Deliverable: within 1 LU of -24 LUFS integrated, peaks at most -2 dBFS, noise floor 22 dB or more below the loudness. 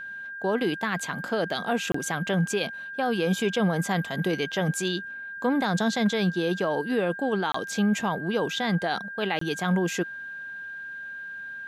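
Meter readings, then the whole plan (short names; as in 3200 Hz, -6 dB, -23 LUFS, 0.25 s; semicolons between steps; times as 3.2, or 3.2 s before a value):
dropouts 3; longest dropout 24 ms; steady tone 1600 Hz; tone level -35 dBFS; loudness -27.5 LUFS; peak -12.0 dBFS; loudness target -24.0 LUFS
-> interpolate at 1.92/7.52/9.39, 24 ms; notch 1600 Hz, Q 30; gain +3.5 dB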